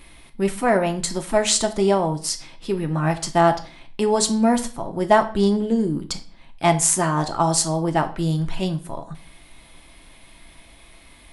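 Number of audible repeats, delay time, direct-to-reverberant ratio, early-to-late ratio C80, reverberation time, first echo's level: none, none, 5.5 dB, 19.0 dB, 0.40 s, none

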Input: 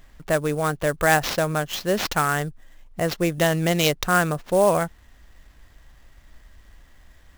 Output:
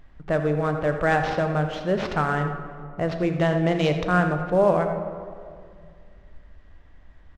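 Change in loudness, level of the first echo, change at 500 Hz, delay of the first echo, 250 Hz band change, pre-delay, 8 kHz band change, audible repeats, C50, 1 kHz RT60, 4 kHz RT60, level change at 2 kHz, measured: -1.5 dB, -13.0 dB, 0.0 dB, 84 ms, +1.0 dB, 7 ms, under -15 dB, 1, 6.5 dB, 2.0 s, 1.1 s, -3.5 dB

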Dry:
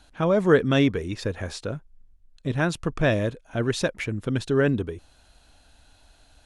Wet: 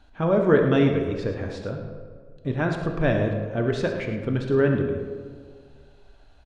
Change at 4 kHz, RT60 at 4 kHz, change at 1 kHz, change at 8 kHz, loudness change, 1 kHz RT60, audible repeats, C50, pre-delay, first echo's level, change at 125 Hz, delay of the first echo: -6.0 dB, 0.95 s, 0.0 dB, under -10 dB, +1.0 dB, 1.7 s, 2, 4.5 dB, 3 ms, -12.5 dB, +1.0 dB, 68 ms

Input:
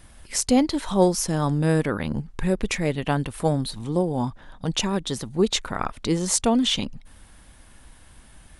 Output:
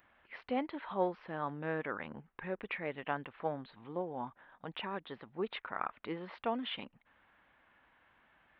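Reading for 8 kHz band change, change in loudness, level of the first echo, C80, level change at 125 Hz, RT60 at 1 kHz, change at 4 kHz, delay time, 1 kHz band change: under -40 dB, -16.0 dB, none, none, -23.0 dB, none, -19.0 dB, none, -9.5 dB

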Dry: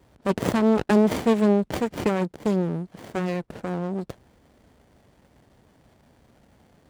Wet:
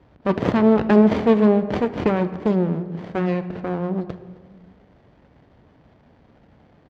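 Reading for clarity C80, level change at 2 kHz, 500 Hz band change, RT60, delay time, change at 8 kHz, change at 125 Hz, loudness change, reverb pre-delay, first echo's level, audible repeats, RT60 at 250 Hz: 14.0 dB, +2.5 dB, +4.0 dB, 1.4 s, 0.264 s, under -10 dB, +4.0 dB, +4.0 dB, 4 ms, -22.5 dB, 1, 1.8 s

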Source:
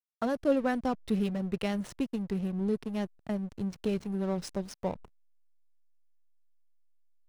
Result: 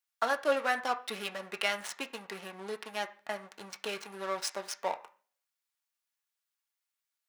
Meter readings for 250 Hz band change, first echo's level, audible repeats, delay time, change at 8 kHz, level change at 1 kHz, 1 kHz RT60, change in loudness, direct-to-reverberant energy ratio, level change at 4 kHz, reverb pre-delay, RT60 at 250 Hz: -16.5 dB, none, none, none, +8.0 dB, +4.5 dB, 0.40 s, -2.5 dB, 4.0 dB, +8.5 dB, 3 ms, 0.55 s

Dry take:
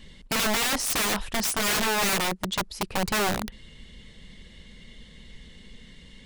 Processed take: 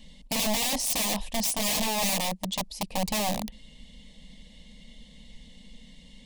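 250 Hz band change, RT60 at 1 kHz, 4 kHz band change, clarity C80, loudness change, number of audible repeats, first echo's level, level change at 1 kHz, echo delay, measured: -0.5 dB, none, -1.5 dB, none, -2.0 dB, none, none, -3.5 dB, none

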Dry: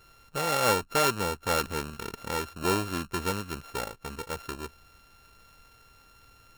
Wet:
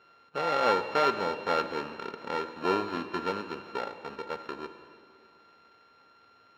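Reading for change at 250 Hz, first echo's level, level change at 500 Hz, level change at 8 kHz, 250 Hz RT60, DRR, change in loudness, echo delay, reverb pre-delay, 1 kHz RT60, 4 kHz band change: -2.0 dB, none, +1.0 dB, under -15 dB, 2.6 s, 9.0 dB, -1.0 dB, none, 3 ms, 2.3 s, -5.0 dB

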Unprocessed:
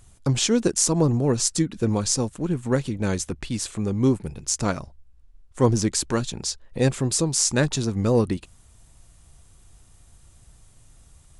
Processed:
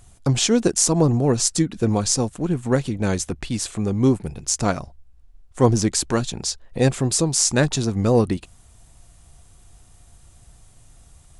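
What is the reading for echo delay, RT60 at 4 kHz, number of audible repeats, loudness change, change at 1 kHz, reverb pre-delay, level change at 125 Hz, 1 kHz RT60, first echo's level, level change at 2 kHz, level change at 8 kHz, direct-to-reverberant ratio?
none, none, none, +2.5 dB, +4.0 dB, none, +2.5 dB, none, none, +2.5 dB, +2.5 dB, none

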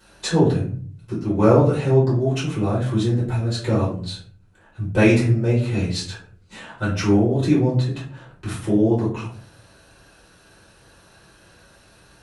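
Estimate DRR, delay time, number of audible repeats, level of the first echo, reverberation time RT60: -9.0 dB, none, none, none, 0.50 s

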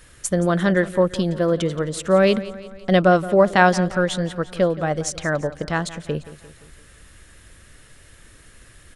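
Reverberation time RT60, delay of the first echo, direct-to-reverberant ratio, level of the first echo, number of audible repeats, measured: none, 0.173 s, none, -16.5 dB, 4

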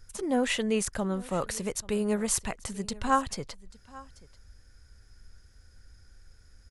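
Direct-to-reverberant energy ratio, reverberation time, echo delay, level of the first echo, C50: none, none, 0.837 s, -21.5 dB, none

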